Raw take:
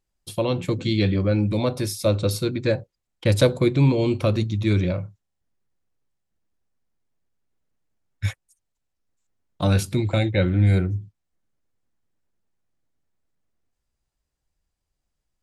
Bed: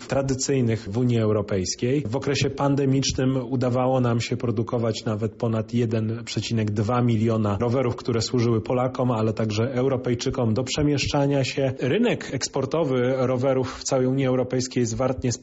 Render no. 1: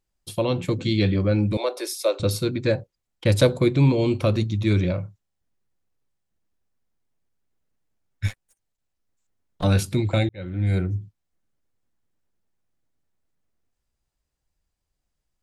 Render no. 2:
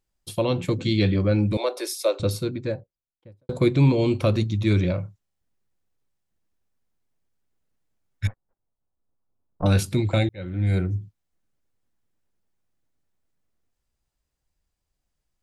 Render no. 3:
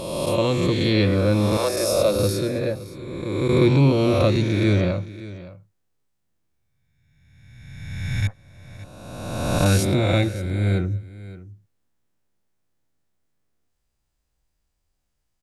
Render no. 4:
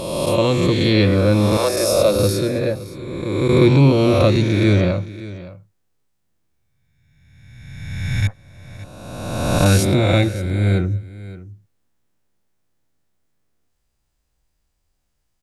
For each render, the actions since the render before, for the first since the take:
1.57–2.20 s: steep high-pass 350 Hz 48 dB/octave; 8.27–9.64 s: partial rectifier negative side -12 dB; 10.29–10.96 s: fade in
1.92–3.49 s: studio fade out; 8.27–9.66 s: low-pass 1.2 kHz 24 dB/octave
reverse spectral sustain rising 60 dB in 1.67 s; delay 568 ms -17 dB
trim +4 dB

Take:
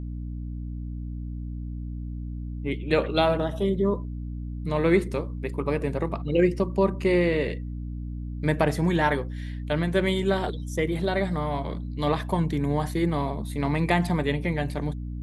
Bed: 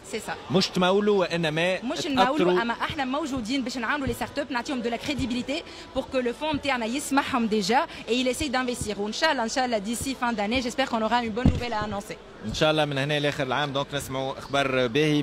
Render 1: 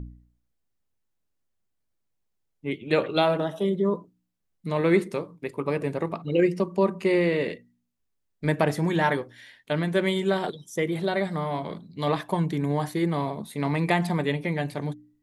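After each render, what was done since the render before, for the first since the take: de-hum 60 Hz, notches 5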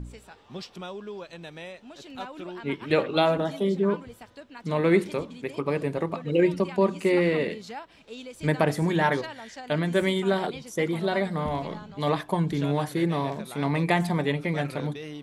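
add bed -16.5 dB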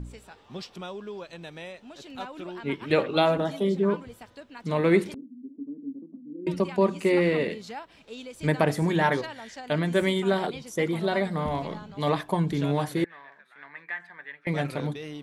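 5.14–6.47 s: Butterworth band-pass 260 Hz, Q 4.5; 13.04–14.47 s: band-pass filter 1.7 kHz, Q 7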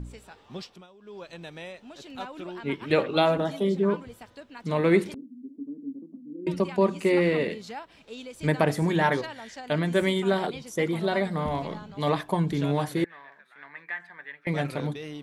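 0.58–1.28 s: dip -16.5 dB, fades 0.29 s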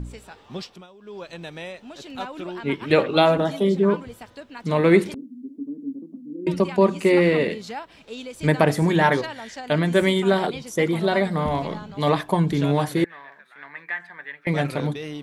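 trim +5 dB

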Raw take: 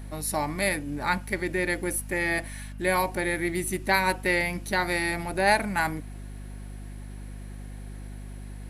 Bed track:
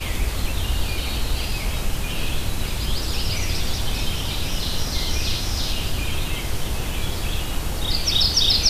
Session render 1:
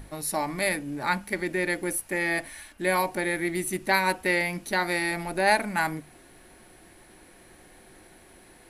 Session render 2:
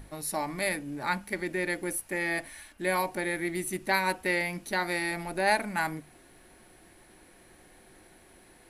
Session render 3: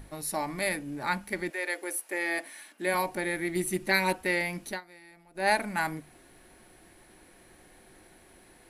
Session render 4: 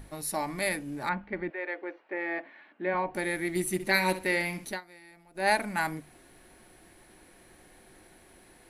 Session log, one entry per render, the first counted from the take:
hum notches 50/100/150/200/250 Hz
trim -3.5 dB
1.49–2.93 s: high-pass 500 Hz -> 180 Hz 24 dB/octave; 3.55–4.13 s: comb 5.7 ms; 4.69–5.46 s: dip -22 dB, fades 0.12 s
1.09–3.15 s: Gaussian low-pass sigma 3.4 samples; 3.73–4.65 s: flutter echo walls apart 11 m, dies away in 0.32 s

